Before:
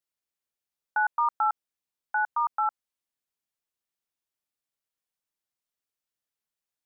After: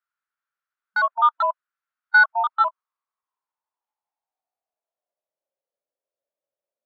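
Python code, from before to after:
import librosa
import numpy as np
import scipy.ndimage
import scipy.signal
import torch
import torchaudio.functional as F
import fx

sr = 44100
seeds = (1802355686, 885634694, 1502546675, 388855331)

p1 = fx.pitch_trill(x, sr, semitones=-5.0, every_ms=203)
p2 = fx.filter_sweep_bandpass(p1, sr, from_hz=1400.0, to_hz=560.0, start_s=2.13, end_s=5.57, q=5.3)
p3 = fx.fold_sine(p2, sr, drive_db=8, ceiling_db=-17.5)
p4 = p2 + (p3 * 10.0 ** (-9.0 / 20.0))
p5 = fx.hpss(p4, sr, part='harmonic', gain_db=9)
y = p5 * 10.0 ** (2.5 / 20.0)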